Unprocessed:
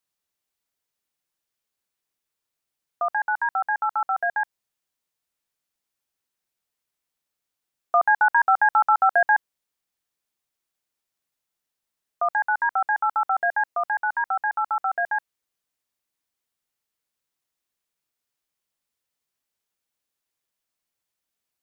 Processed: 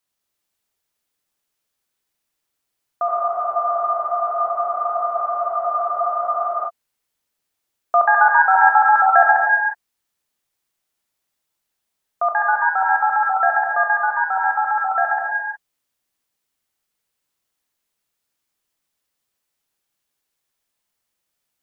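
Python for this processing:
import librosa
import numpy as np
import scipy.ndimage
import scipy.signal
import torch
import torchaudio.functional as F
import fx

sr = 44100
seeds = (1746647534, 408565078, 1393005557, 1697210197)

y = fx.rev_gated(x, sr, seeds[0], gate_ms=390, shape='flat', drr_db=0.0)
y = fx.spec_freeze(y, sr, seeds[1], at_s=3.08, hold_s=3.6)
y = y * librosa.db_to_amplitude(3.0)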